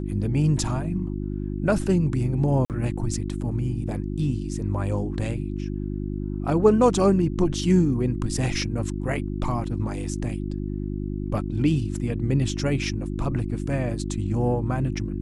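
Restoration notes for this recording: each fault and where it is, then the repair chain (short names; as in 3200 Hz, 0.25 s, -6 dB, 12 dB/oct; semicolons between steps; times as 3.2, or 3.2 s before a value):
hum 50 Hz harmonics 7 -29 dBFS
2.65–2.7 gap 48 ms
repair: de-hum 50 Hz, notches 7; interpolate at 2.65, 48 ms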